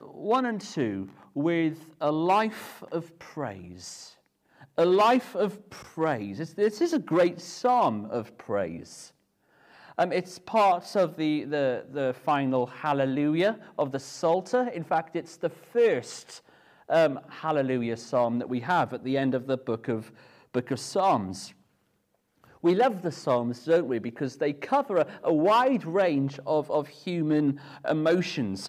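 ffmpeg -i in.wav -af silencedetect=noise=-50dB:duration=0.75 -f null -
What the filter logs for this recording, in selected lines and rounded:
silence_start: 21.53
silence_end: 22.44 | silence_duration: 0.91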